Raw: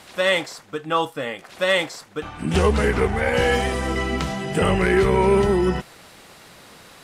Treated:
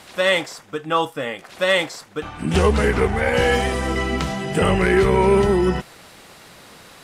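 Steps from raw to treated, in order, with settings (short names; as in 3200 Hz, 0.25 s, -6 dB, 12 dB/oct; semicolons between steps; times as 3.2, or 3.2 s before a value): 0.41–1.33 notch 4200 Hz, Q 13; gain +1.5 dB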